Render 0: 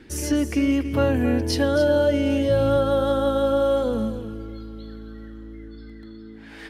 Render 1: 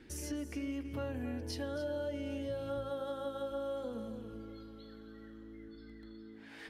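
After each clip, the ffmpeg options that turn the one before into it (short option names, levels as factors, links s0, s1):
-af "bandreject=f=54.39:t=h:w=4,bandreject=f=108.78:t=h:w=4,bandreject=f=163.17:t=h:w=4,bandreject=f=217.56:t=h:w=4,bandreject=f=271.95:t=h:w=4,bandreject=f=326.34:t=h:w=4,bandreject=f=380.73:t=h:w=4,bandreject=f=435.12:t=h:w=4,bandreject=f=489.51:t=h:w=4,bandreject=f=543.9:t=h:w=4,bandreject=f=598.29:t=h:w=4,bandreject=f=652.68:t=h:w=4,bandreject=f=707.07:t=h:w=4,bandreject=f=761.46:t=h:w=4,bandreject=f=815.85:t=h:w=4,bandreject=f=870.24:t=h:w=4,bandreject=f=924.63:t=h:w=4,bandreject=f=979.02:t=h:w=4,bandreject=f=1033.41:t=h:w=4,bandreject=f=1087.8:t=h:w=4,bandreject=f=1142.19:t=h:w=4,bandreject=f=1196.58:t=h:w=4,bandreject=f=1250.97:t=h:w=4,bandreject=f=1305.36:t=h:w=4,bandreject=f=1359.75:t=h:w=4,bandreject=f=1414.14:t=h:w=4,bandreject=f=1468.53:t=h:w=4,bandreject=f=1522.92:t=h:w=4,bandreject=f=1577.31:t=h:w=4,bandreject=f=1631.7:t=h:w=4,bandreject=f=1686.09:t=h:w=4,bandreject=f=1740.48:t=h:w=4,acompressor=threshold=0.0178:ratio=2,volume=0.376"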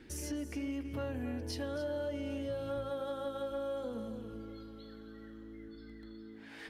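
-af "asoftclip=type=tanh:threshold=0.0355,volume=1.19"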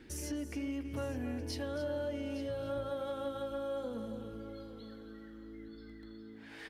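-af "aecho=1:1:861:0.178"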